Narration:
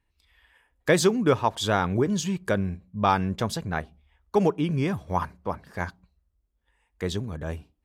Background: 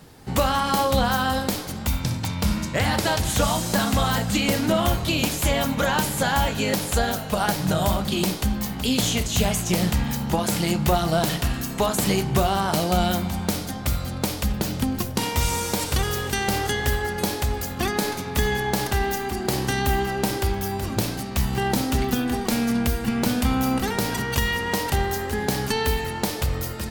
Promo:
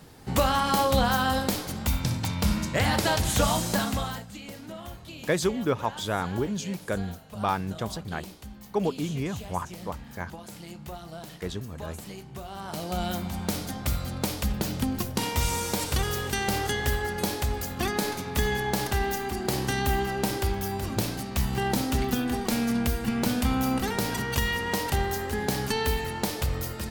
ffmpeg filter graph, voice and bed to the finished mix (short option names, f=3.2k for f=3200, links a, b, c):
-filter_complex "[0:a]adelay=4400,volume=-5dB[a];[1:a]volume=14dB,afade=t=out:st=3.6:d=0.67:silence=0.133352,afade=t=in:st=12.45:d=1.2:silence=0.158489[b];[a][b]amix=inputs=2:normalize=0"